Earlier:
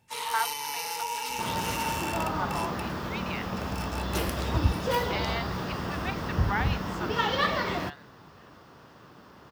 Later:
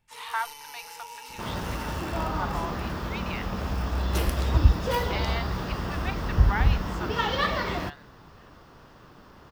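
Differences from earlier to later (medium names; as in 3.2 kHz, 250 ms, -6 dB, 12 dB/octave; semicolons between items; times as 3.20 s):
first sound -10.0 dB; master: remove high-pass 98 Hz 12 dB/octave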